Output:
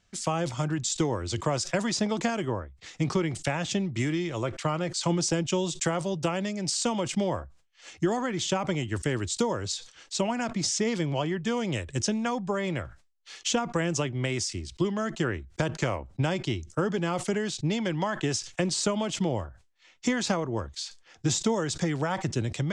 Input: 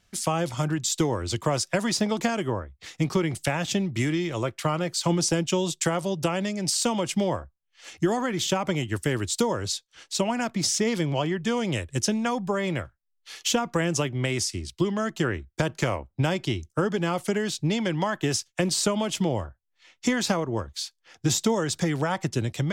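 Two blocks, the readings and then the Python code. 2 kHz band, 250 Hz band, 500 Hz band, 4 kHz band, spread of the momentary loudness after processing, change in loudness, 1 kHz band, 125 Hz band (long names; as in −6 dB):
−2.5 dB, −2.5 dB, −2.5 dB, −3.0 dB, 5 LU, −2.5 dB, −2.5 dB, −2.0 dB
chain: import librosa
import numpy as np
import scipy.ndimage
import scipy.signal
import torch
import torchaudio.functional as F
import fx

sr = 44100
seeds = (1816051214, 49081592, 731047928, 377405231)

y = scipy.signal.sosfilt(scipy.signal.cheby1(3, 1.0, 7800.0, 'lowpass', fs=sr, output='sos'), x)
y = fx.sustainer(y, sr, db_per_s=130.0)
y = y * librosa.db_to_amplitude(-2.5)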